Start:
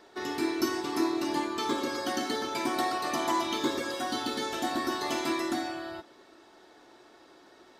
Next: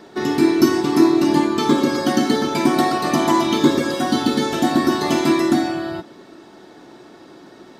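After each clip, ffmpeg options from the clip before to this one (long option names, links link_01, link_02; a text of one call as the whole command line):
ffmpeg -i in.wav -af "equalizer=frequency=170:width=0.82:gain=14.5,volume=8.5dB" out.wav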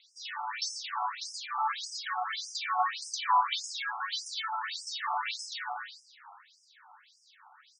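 ffmpeg -i in.wav -filter_complex "[0:a]asplit=2[link_01][link_02];[link_02]asplit=5[link_03][link_04][link_05][link_06][link_07];[link_03]adelay=144,afreqshift=120,volume=-12.5dB[link_08];[link_04]adelay=288,afreqshift=240,volume=-18.3dB[link_09];[link_05]adelay=432,afreqshift=360,volume=-24.2dB[link_10];[link_06]adelay=576,afreqshift=480,volume=-30dB[link_11];[link_07]adelay=720,afreqshift=600,volume=-35.9dB[link_12];[link_08][link_09][link_10][link_11][link_12]amix=inputs=5:normalize=0[link_13];[link_01][link_13]amix=inputs=2:normalize=0,afftfilt=real='re*between(b*sr/1024,970*pow(7100/970,0.5+0.5*sin(2*PI*1.7*pts/sr))/1.41,970*pow(7100/970,0.5+0.5*sin(2*PI*1.7*pts/sr))*1.41)':imag='im*between(b*sr/1024,970*pow(7100/970,0.5+0.5*sin(2*PI*1.7*pts/sr))/1.41,970*pow(7100/970,0.5+0.5*sin(2*PI*1.7*pts/sr))*1.41)':win_size=1024:overlap=0.75,volume=-3.5dB" out.wav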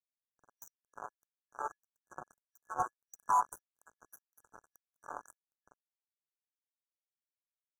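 ffmpeg -i in.wav -af "aecho=1:1:151:0.0794,acrusher=bits=3:mix=0:aa=0.5,afftfilt=real='re*(1-between(b*sr/4096,1700,5800))':imag='im*(1-between(b*sr/4096,1700,5800))':win_size=4096:overlap=0.75,volume=-4.5dB" out.wav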